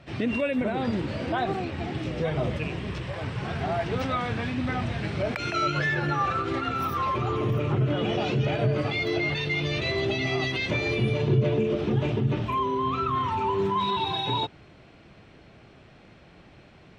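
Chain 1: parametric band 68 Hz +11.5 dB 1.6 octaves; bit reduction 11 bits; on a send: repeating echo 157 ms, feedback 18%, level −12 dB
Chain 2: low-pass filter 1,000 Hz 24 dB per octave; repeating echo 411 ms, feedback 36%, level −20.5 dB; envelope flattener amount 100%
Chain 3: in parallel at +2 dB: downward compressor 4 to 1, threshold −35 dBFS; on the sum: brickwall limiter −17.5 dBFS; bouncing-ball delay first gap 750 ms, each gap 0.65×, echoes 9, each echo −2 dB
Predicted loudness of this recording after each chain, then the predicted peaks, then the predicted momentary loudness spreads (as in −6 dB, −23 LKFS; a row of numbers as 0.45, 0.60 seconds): −24.5, −19.0, −22.0 LKFS; −7.0, −6.5, −8.0 dBFS; 6, 1, 4 LU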